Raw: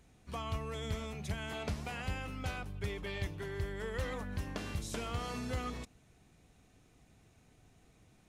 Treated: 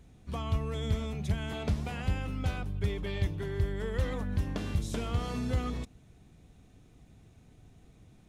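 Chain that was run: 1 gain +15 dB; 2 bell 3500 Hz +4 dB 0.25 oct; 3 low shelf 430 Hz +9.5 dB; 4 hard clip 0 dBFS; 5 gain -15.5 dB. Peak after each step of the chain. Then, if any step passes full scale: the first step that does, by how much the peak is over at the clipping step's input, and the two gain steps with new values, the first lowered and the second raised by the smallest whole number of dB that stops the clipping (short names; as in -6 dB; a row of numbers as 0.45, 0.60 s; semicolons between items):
-11.0, -11.0, -2.5, -2.5, -18.0 dBFS; no overload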